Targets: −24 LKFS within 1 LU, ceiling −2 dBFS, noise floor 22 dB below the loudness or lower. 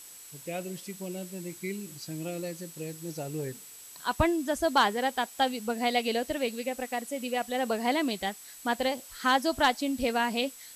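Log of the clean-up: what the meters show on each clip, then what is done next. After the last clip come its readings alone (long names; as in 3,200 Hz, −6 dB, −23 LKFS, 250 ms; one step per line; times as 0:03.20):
interfering tone 7,800 Hz; level of the tone −50 dBFS; background noise floor −48 dBFS; target noise floor −53 dBFS; integrated loudness −30.5 LKFS; sample peak −13.0 dBFS; target loudness −24.0 LKFS
→ notch filter 7,800 Hz, Q 30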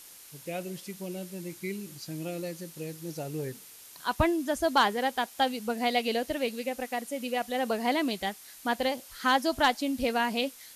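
interfering tone none found; background noise floor −50 dBFS; target noise floor −53 dBFS
→ broadband denoise 6 dB, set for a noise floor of −50 dBFS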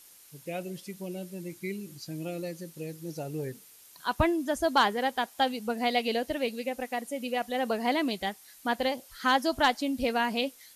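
background noise floor −55 dBFS; integrated loudness −30.5 LKFS; sample peak −13.0 dBFS; target loudness −24.0 LKFS
→ level +6.5 dB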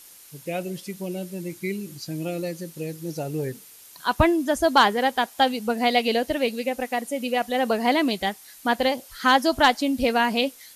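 integrated loudness −24.0 LKFS; sample peak −6.5 dBFS; background noise floor −48 dBFS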